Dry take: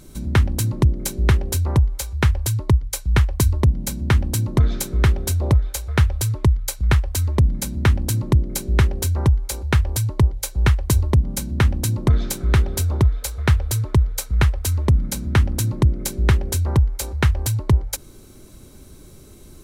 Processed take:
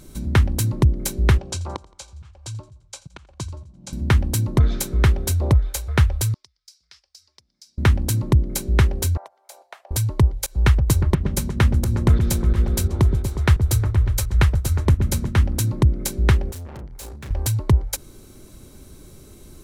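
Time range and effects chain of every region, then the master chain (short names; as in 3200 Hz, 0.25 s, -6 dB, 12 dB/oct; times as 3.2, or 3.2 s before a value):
1.38–3.93 auto swell 0.567 s + speaker cabinet 130–7800 Hz, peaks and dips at 250 Hz -10 dB, 430 Hz -8 dB, 1900 Hz -9 dB + feedback echo 85 ms, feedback 50%, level -21 dB
6.34–7.78 band-pass 5100 Hz, Q 6.6 + compressor 5:1, threshold -42 dBFS
9.17–9.91 ladder high-pass 630 Hz, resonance 75% + compressor 2:1, threshold -40 dBFS
10.46–15.39 pump 87 bpm, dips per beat 2, -24 dB, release 0.143 s + repeats that get brighter 0.12 s, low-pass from 400 Hz, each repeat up 1 oct, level -6 dB
16.51–17.31 low shelf 140 Hz -4.5 dB + tube stage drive 34 dB, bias 0.55 + doubler 33 ms -7 dB
whole clip: dry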